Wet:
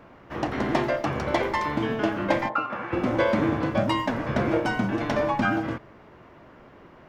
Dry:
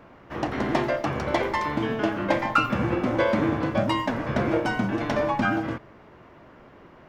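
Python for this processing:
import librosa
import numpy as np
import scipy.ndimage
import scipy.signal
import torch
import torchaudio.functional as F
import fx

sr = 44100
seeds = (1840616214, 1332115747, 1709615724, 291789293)

y = fx.bandpass_q(x, sr, hz=fx.line((2.48, 510.0), (2.92, 1700.0)), q=0.98, at=(2.48, 2.92), fade=0.02)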